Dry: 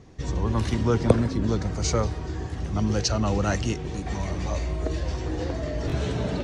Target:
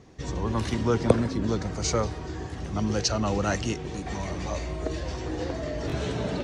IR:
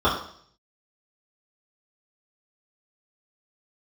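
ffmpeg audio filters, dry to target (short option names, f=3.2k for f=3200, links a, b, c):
-af "lowshelf=f=120:g=-7.5"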